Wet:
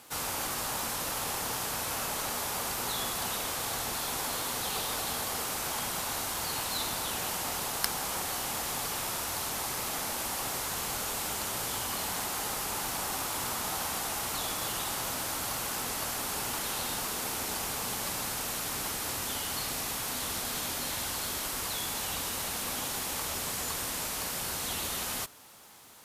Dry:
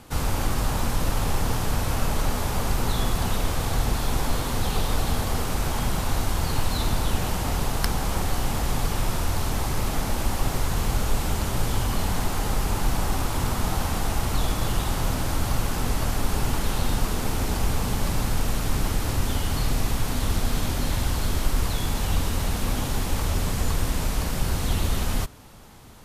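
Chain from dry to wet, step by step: HPF 710 Hz 6 dB/oct; high shelf 6100 Hz +6.5 dB; added noise white -66 dBFS; gain -3 dB

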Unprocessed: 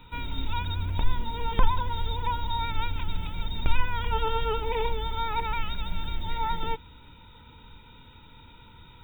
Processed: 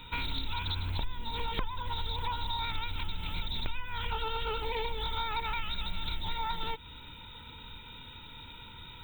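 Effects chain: high shelf 2200 Hz +11 dB; compressor 10:1, threshold -29 dBFS, peak gain reduction 17 dB; Doppler distortion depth 0.45 ms

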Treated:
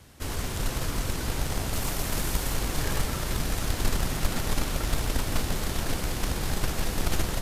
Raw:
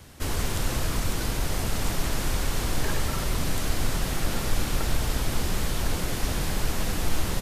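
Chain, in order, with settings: 1.73–2.54 high shelf 8800 Hz +7.5 dB; echo with dull and thin repeats by turns 0.223 s, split 980 Hz, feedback 86%, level -7 dB; added harmonics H 3 -18 dB, 6 -42 dB, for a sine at -11.5 dBFS

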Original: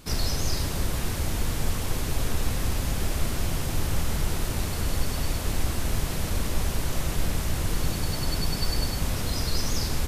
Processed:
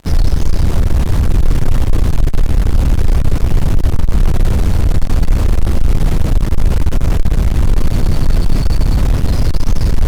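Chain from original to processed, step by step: fuzz box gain 50 dB, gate -42 dBFS; tilt -3 dB/oct; gain -6.5 dB

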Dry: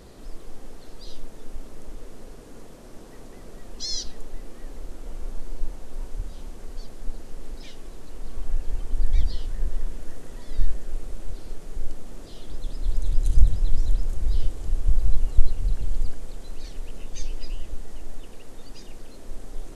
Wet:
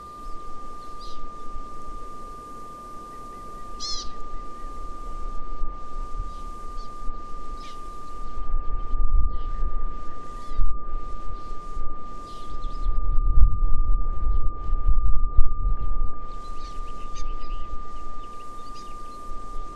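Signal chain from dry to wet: treble ducked by the level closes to 360 Hz, closed at -10 dBFS; whine 1200 Hz -38 dBFS

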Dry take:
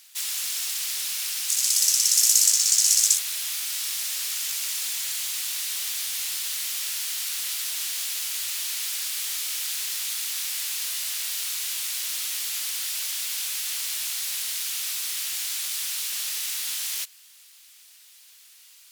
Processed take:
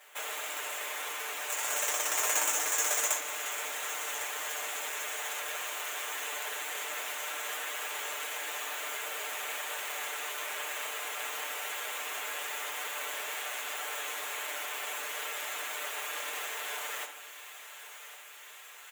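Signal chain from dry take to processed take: median filter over 9 samples; in parallel at +3 dB: compressor, threshold -46 dBFS, peak gain reduction 22 dB; on the sum: HPF 480 Hz 24 dB/oct; bell 4900 Hz -9.5 dB 1.3 oct; comb 6.7 ms, depth 79%; thinning echo 1.105 s, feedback 74%, high-pass 780 Hz, level -13 dB; on a send at -6 dB: reverb RT60 1.2 s, pre-delay 3 ms; on the sum: gain -2 dB

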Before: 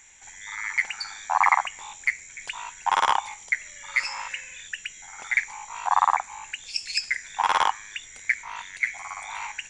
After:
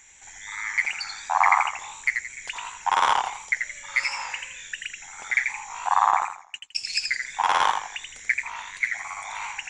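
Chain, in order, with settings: 6.11–6.75 gate -32 dBFS, range -39 dB; warbling echo 84 ms, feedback 33%, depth 116 cents, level -5.5 dB

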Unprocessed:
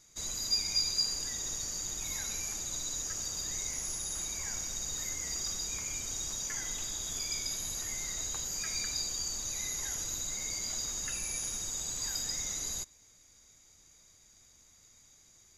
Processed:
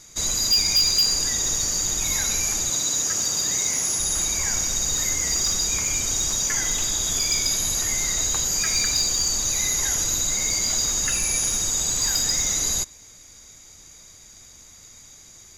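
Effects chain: 2.7–3.99 HPF 120 Hz 12 dB/oct; in parallel at +1 dB: sine folder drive 7 dB, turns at -18 dBFS

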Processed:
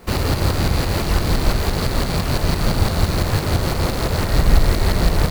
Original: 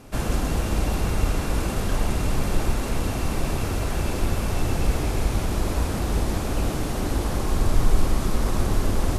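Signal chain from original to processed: rattling part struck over -27 dBFS, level -21 dBFS; tremolo saw up 3.4 Hz, depth 50%; speed mistake 45 rpm record played at 78 rpm; gain +6.5 dB

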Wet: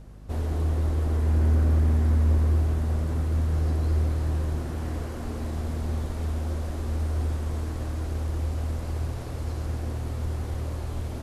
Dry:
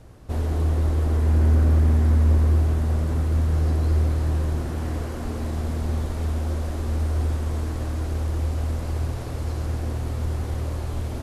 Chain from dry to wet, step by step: hum 50 Hz, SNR 21 dB; gain -3.5 dB

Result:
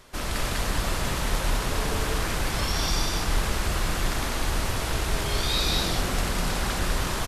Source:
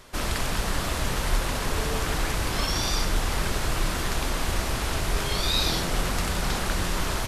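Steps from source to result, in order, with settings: loudspeakers at several distances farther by 38 m -9 dB, 69 m -2 dB; gain -2.5 dB

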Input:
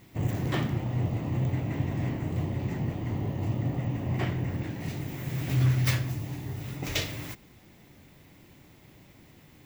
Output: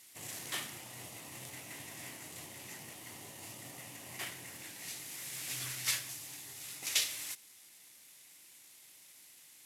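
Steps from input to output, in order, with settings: CVSD 64 kbps; differentiator; gain +6.5 dB

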